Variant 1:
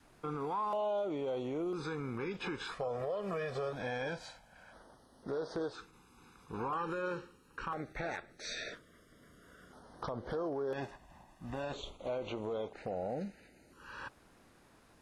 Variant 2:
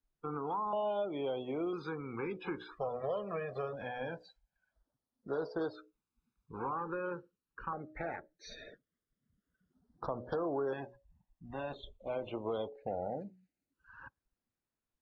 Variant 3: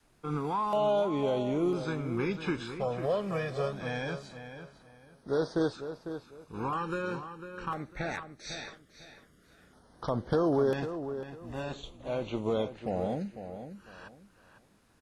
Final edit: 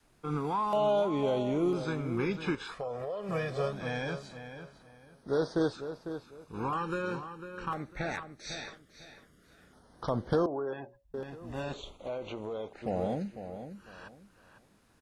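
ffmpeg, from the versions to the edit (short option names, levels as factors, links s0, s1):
-filter_complex "[0:a]asplit=2[s0][s1];[2:a]asplit=4[s2][s3][s4][s5];[s2]atrim=end=2.552[s6];[s0]atrim=start=2.548:end=3.292[s7];[s3]atrim=start=3.288:end=10.462[s8];[1:a]atrim=start=10.458:end=11.142[s9];[s4]atrim=start=11.138:end=11.742[s10];[s1]atrim=start=11.738:end=12.822[s11];[s5]atrim=start=12.818[s12];[s6][s7]acrossfade=d=0.004:c1=hsin:c2=hsin[s13];[s13][s8]acrossfade=d=0.004:c1=hsin:c2=hsin[s14];[s14][s9]acrossfade=d=0.004:c1=hsin:c2=hsin[s15];[s15][s10]acrossfade=d=0.004:c1=hsin:c2=hsin[s16];[s16][s11]acrossfade=d=0.004:c1=hsin:c2=hsin[s17];[s17][s12]acrossfade=d=0.004:c1=hsin:c2=hsin"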